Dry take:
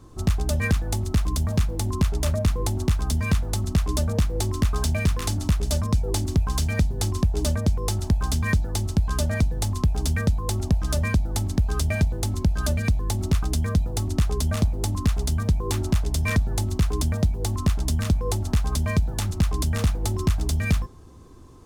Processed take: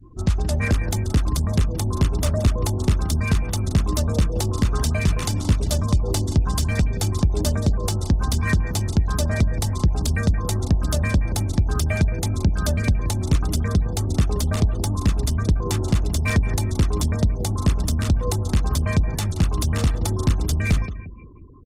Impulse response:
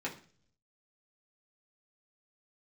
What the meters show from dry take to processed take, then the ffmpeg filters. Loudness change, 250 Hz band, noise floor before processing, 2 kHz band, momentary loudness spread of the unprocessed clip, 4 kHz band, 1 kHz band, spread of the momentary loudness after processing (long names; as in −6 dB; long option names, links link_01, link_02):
+2.5 dB, +2.5 dB, −33 dBFS, +2.0 dB, 2 LU, +2.0 dB, +2.5 dB, 1 LU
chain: -af "aecho=1:1:176|352|528|704:0.251|0.108|0.0464|0.02,afftfilt=real='re*gte(hypot(re,im),0.00891)':imag='im*gte(hypot(re,im),0.00891)':win_size=1024:overlap=0.75,volume=2dB" -ar 48000 -c:a libopus -b:a 16k